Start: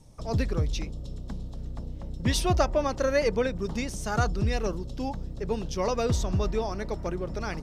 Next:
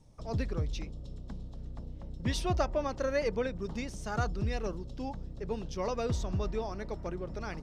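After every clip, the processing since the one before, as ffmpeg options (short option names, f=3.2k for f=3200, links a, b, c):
-af "highshelf=f=9.1k:g=-11,volume=-6dB"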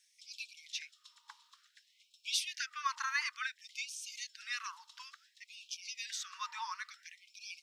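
-af "afftfilt=real='re*gte(b*sr/1024,850*pow(2300/850,0.5+0.5*sin(2*PI*0.57*pts/sr)))':imag='im*gte(b*sr/1024,850*pow(2300/850,0.5+0.5*sin(2*PI*0.57*pts/sr)))':win_size=1024:overlap=0.75,volume=5.5dB"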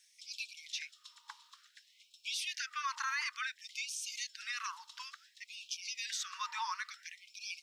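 -af "alimiter=level_in=8dB:limit=-24dB:level=0:latency=1:release=40,volume=-8dB,volume=4dB"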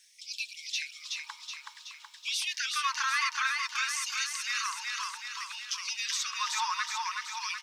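-af "aecho=1:1:374|748|1122|1496|1870|2244|2618|2992:0.708|0.404|0.23|0.131|0.0747|0.0426|0.0243|0.0138,volume=6dB"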